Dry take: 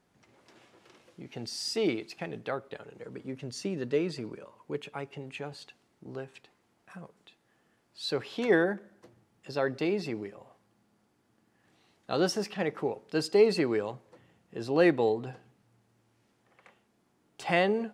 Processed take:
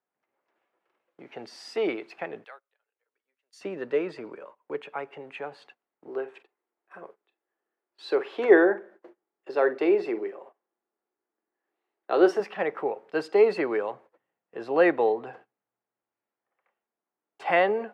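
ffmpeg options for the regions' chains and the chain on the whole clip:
-filter_complex "[0:a]asettb=1/sr,asplit=3[a][b][c];[a]atrim=end=2.444[d];[b]atrim=start=2.44:end=3.61,asetpts=PTS-STARTPTS,afade=t=in:d=0.004:c=qsin,afade=t=out:st=1.166:d=0.004:c=qsin,highpass=250,aderivative[e];[c]atrim=start=3.606[f];[d][e]acrossfade=d=0.004:c1=hsin:c2=qsin[g];[g][f]acrossfade=d=0.004:c1=qsin:c2=hsin,asettb=1/sr,asplit=3[h][i][j];[h]atrim=end=6.084[k];[i]atrim=start=6.08:end=12.4,asetpts=PTS-STARTPTS,afade=t=in:d=0.004:c=qsin,afade=t=out:st=6.316:d=0.004:c=qsin,highpass=220,equalizer=f=370:t=o:w=0.43:g=10.5,asplit=2[l][m];[m]adelay=46,volume=-13dB[n];[l][n]amix=inputs=2:normalize=0,atrim=end_sample=278712[o];[j]atrim=start=12.396[p];[k][o]acrossfade=d=0.004:c1=hsin:c2=qsin[q];[q][p]acrossfade=d=0.004:c1=qsin:c2=hsin,agate=range=-21dB:threshold=-51dB:ratio=16:detection=peak,highpass=160,acrossover=split=400 2500:gain=0.178 1 0.1[r][s][t];[r][s][t]amix=inputs=3:normalize=0,volume=6.5dB"

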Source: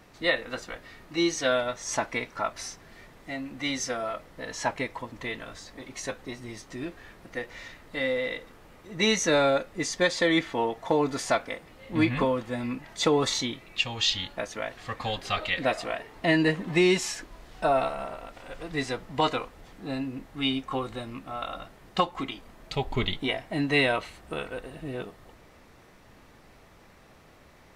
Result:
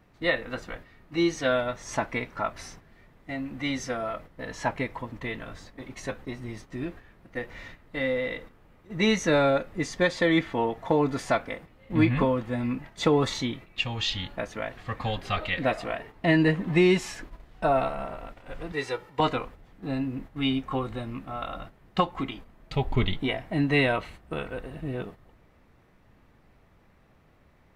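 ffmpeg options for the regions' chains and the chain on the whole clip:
-filter_complex "[0:a]asettb=1/sr,asplit=3[a][b][c];[a]atrim=end=18.724[d];[b]atrim=start=18.72:end=19.2,asetpts=PTS-STARTPTS,afade=t=in:d=0.004:c=qsin,afade=t=out:st=0.476:d=0.004:c=qsin,highpass=f=430:p=1,aecho=1:1:2.2:0.74,atrim=end_sample=21168[e];[c]atrim=start=19.196[f];[d][e]acrossfade=d=0.004:c1=hsin:c2=qsin[g];[g][f]acrossfade=d=0.004:c1=qsin:c2=hsin,highshelf=f=9.8k:g=11,agate=range=-8dB:threshold=-44dB:ratio=16:detection=peak,bass=f=250:g=6,treble=f=4k:g=-12"

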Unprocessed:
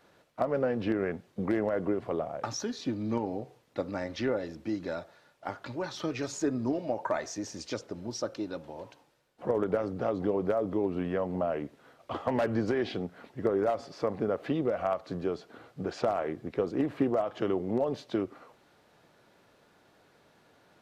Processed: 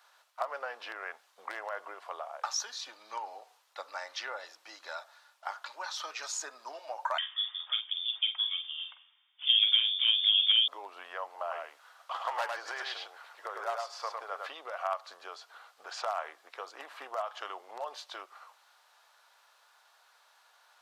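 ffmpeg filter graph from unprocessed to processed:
-filter_complex "[0:a]asettb=1/sr,asplit=3[a][b][c];[a]atrim=end=7.184[d];[b]atrim=start=7.18:end=10.68,asetpts=PTS-STARTPTS,afade=t=in:d=0.004:c=qsin,afade=t=out:st=3.496:d=0.004:c=qsin,asplit=2[e][f];[f]adelay=46,volume=-8dB[g];[e][g]amix=inputs=2:normalize=0,atrim=end_sample=154350,lowpass=f=3.1k:t=q:w=0.5098,lowpass=f=3.1k:t=q:w=0.6013,lowpass=f=3.1k:t=q:w=0.9,lowpass=f=3.1k:t=q:w=2.563,afreqshift=-3700[h];[c]atrim=start=10.676[i];[d][h]acrossfade=d=0.004:c1=hsin:c2=qsin[j];[j][i]acrossfade=d=0.004:c1=qsin:c2=hsin,asettb=1/sr,asplit=3[k][l][m];[k]atrim=end=11.284[n];[l]atrim=start=11.28:end=14.47,asetpts=PTS-STARTPTS,afade=t=in:d=0.004:c=qsin,afade=t=out:st=3.186:d=0.004:c=qsin,highpass=330,aecho=1:1:104:0.668,atrim=end_sample=140679[o];[m]atrim=start=14.466[p];[n][o]acrossfade=d=0.004:c1=hsin:c2=qsin[q];[q][p]acrossfade=d=0.004:c1=qsin:c2=hsin,highpass=f=910:w=0.5412,highpass=f=910:w=1.3066,equalizer=f=2.1k:w=1.5:g=-6,volume=5dB"

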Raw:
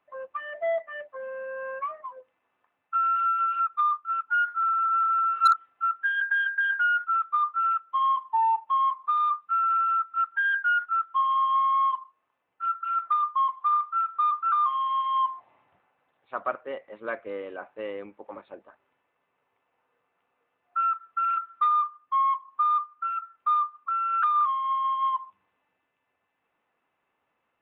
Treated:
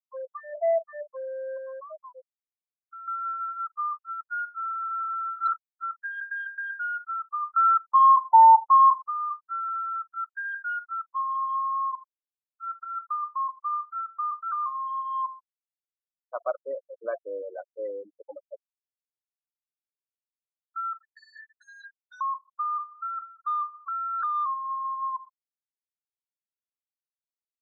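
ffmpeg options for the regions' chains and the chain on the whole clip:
-filter_complex "[0:a]asettb=1/sr,asplit=3[a][b][c];[a]atrim=end=1.574[d];[b]atrim=start=1.57:end=3.08,asetpts=PTS-STARTPTS,afade=t=in:d=0.004:c=qsin,afade=t=out:st=1.506:d=0.004:c=qsin,acrossover=split=270|3000[e][f][g];[f]acompressor=threshold=-34dB:ratio=6:attack=3.2:release=140:knee=2.83:detection=peak[h];[e][h][g]amix=inputs=3:normalize=0,highshelf=f=2.2k:g=-5[i];[c]atrim=start=3.076[j];[d][i]acrossfade=d=0.004:c1=hsin:c2=qsin[k];[k][j]acrossfade=d=0.004:c1=qsin:c2=hsin,asettb=1/sr,asplit=3[l][m][n];[l]atrim=end=7.564[o];[m]atrim=start=7.56:end=9.02,asetpts=PTS-STARTPTS,afade=t=in:d=0.004:c=qsin,afade=t=out:st=1.456:d=0.004:c=qsin,agate=range=-33dB:threshold=-48dB:ratio=3:release=100:detection=peak,equalizer=f=980:w=0.36:g=12.5[p];[n]atrim=start=9.016[q];[o][p]acrossfade=d=0.004:c1=hsin:c2=qsin[r];[r][q]acrossfade=d=0.004:c1=qsin:c2=hsin,asettb=1/sr,asplit=3[s][t][u];[s]atrim=end=21.034[v];[t]atrim=start=21.03:end=22.21,asetpts=PTS-STARTPTS,afade=t=in:d=0.004:c=qsin,afade=t=out:st=1.176:d=0.004:c=qsin,asubboost=boost=4:cutoff=150,aeval=exprs='0.0299*(abs(mod(val(0)/0.0299+3,4)-2)-1)':c=same,afreqshift=410[w];[u]atrim=start=22.206[x];[v][w]acrossfade=d=0.004:c1=hsin:c2=qsin[y];[y][x]acrossfade=d=0.004:c1=qsin:c2=hsin,asettb=1/sr,asplit=3[z][aa][ab];[z]atrim=end=22.794[ac];[aa]atrim=start=22.79:end=24.54,asetpts=PTS-STARTPTS,afade=t=in:d=0.004:c=qsin,afade=t=out:st=1.746:d=0.004:c=qsin,aeval=exprs='val(0)+0.5*0.00708*sgn(val(0))':c=same,asplit=2[ad][ae];[ae]highpass=f=720:p=1,volume=10dB,asoftclip=type=tanh:threshold=-15.5dB[af];[ad][af]amix=inputs=2:normalize=0,lowpass=f=2.3k:p=1,volume=-6dB[ag];[ab]atrim=start=24.536[ah];[ac][ag]acrossfade=d=0.004:c1=hsin:c2=qsin[ai];[ai][ah]acrossfade=d=0.004:c1=qsin:c2=hsin,afftfilt=real='re*gte(hypot(re,im),0.0501)':imag='im*gte(hypot(re,im),0.0501)':win_size=1024:overlap=0.75,lowpass=1.8k,equalizer=f=610:t=o:w=0.97:g=12,volume=-7.5dB"

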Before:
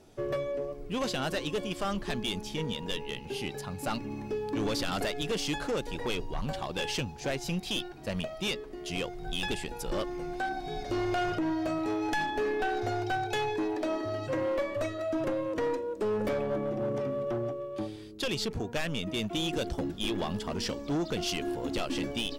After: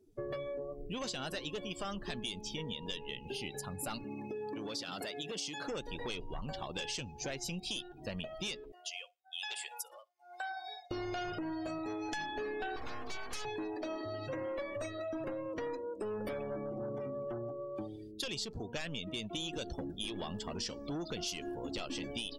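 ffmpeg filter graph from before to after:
-filter_complex "[0:a]asettb=1/sr,asplit=3[a][b][c];[a]atrim=end=4.044[d];[b]atrim=start=4.04:end=5.68,asetpts=PTS-STARTPTS,afade=t=in:d=0.004:c=qsin,afade=t=out:st=1.636:d=0.004:c=qsin,highpass=150,acompressor=threshold=-32dB:ratio=4:attack=3.2:release=140:knee=1:detection=peak[e];[c]atrim=start=5.676[f];[d][e]acrossfade=d=0.004:c1=hsin:c2=qsin[g];[g][f]acrossfade=d=0.004:c1=qsin:c2=hsin,asettb=1/sr,asplit=3[h][i][j];[h]atrim=end=8.724[k];[i]atrim=start=8.72:end=10.91,asetpts=PTS-STARTPTS,afade=t=in:d=0.004:c=qsin,afade=t=out:st=2.186:d=0.004:c=qsin,highpass=f=640:w=0.5412,highpass=f=640:w=1.3066,tremolo=f=1.1:d=0.9,aecho=1:1:60|120|180:0.2|0.0698|0.0244,atrim=end_sample=96579[l];[j]atrim=start=10.906[m];[k][l]acrossfade=d=0.004:c1=hsin:c2=qsin[n];[n][m]acrossfade=d=0.004:c1=qsin:c2=hsin,asettb=1/sr,asplit=3[o][p][q];[o]atrim=end=12.764[r];[p]atrim=start=12.76:end=13.45,asetpts=PTS-STARTPTS,afade=t=in:d=0.004:c=qsin,afade=t=out:st=0.686:d=0.004:c=qsin,bandreject=f=440:w=13,aeval=exprs='abs(val(0))':c=same[s];[q]atrim=start=13.446[t];[r][s]acrossfade=d=0.004:c1=hsin:c2=qsin[u];[u][t]acrossfade=d=0.004:c1=qsin:c2=hsin,afftdn=nr=27:nf=-46,aemphasis=mode=production:type=75kf,acompressor=threshold=-36dB:ratio=4,volume=-2dB"

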